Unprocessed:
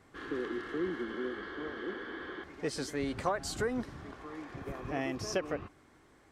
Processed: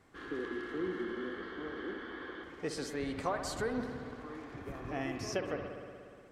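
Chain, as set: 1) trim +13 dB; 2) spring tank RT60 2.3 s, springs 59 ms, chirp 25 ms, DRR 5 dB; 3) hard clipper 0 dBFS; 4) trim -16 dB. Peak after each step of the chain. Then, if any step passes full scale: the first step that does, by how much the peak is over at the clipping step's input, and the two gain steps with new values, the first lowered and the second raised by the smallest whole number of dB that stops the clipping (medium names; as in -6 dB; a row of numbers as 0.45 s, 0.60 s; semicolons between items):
-5.5 dBFS, -5.0 dBFS, -5.0 dBFS, -21.0 dBFS; nothing clips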